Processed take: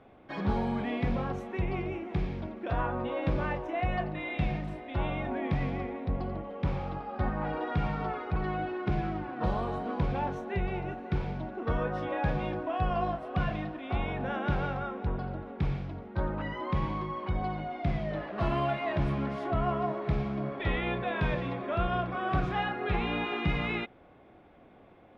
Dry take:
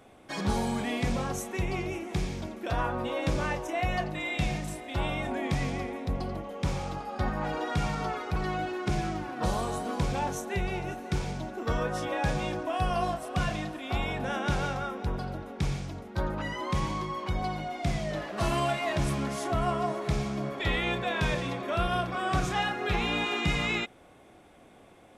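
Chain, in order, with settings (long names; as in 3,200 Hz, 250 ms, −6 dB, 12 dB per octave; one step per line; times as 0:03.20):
high-frequency loss of the air 370 metres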